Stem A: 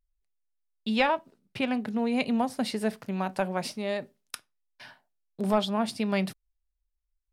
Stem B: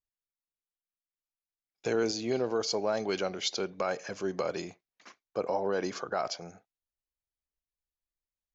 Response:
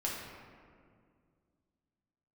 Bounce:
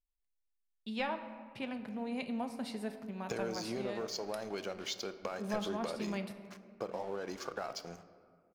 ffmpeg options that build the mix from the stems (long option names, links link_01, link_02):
-filter_complex "[0:a]volume=-14.5dB,asplit=2[link_01][link_02];[link_02]volume=-8dB[link_03];[1:a]acompressor=threshold=-37dB:ratio=6,aeval=exprs='sgn(val(0))*max(abs(val(0))-0.00211,0)':channel_layout=same,adelay=1450,volume=0dB,asplit=2[link_04][link_05];[link_05]volume=-12.5dB[link_06];[2:a]atrim=start_sample=2205[link_07];[link_03][link_06]amix=inputs=2:normalize=0[link_08];[link_08][link_07]afir=irnorm=-1:irlink=0[link_09];[link_01][link_04][link_09]amix=inputs=3:normalize=0"